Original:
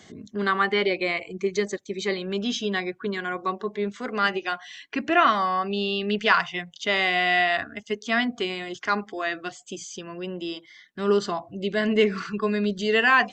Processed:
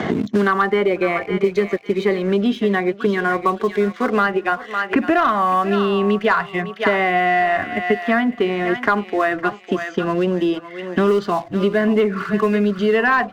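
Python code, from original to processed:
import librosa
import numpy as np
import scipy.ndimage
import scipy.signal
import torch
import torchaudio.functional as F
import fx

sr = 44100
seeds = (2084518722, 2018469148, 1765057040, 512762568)

y = scipy.signal.sosfilt(scipy.signal.butter(2, 1600.0, 'lowpass', fs=sr, output='sos'), x)
y = fx.leveller(y, sr, passes=1)
y = fx.echo_thinned(y, sr, ms=555, feedback_pct=29, hz=940.0, wet_db=-11.5)
y = fx.band_squash(y, sr, depth_pct=100)
y = y * librosa.db_to_amplitude(4.0)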